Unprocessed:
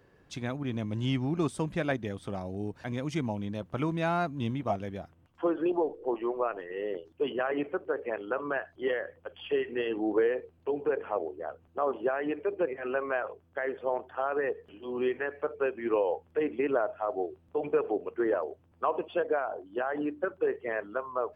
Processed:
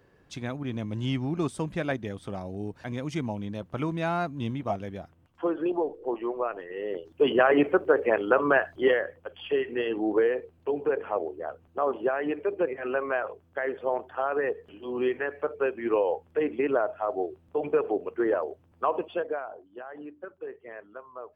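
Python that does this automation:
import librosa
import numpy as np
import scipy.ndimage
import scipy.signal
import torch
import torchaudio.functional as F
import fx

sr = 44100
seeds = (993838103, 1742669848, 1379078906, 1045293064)

y = fx.gain(x, sr, db=fx.line((6.83, 0.5), (7.35, 10.0), (8.75, 10.0), (9.22, 2.5), (18.99, 2.5), (19.78, -10.0)))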